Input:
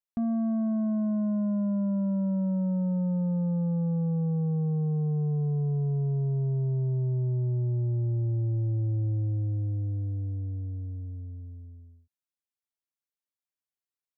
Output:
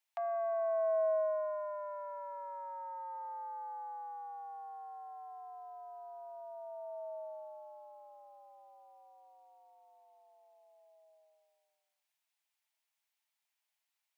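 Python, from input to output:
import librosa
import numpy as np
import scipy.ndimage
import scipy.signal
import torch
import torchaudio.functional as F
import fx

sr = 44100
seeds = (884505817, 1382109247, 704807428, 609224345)

y = scipy.signal.sosfilt(scipy.signal.cheby1(6, 6, 620.0, 'highpass', fs=sr, output='sos'), x)
y = F.gain(torch.from_numpy(y), 12.0).numpy()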